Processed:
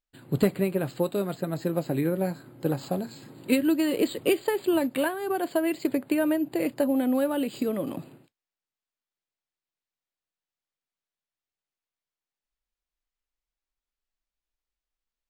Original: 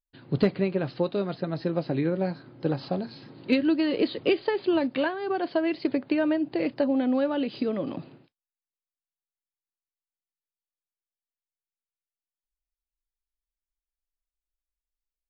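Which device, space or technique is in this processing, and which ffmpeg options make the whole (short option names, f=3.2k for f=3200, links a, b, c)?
crushed at another speed: -af "asetrate=55125,aresample=44100,acrusher=samples=3:mix=1:aa=0.000001,asetrate=35280,aresample=44100"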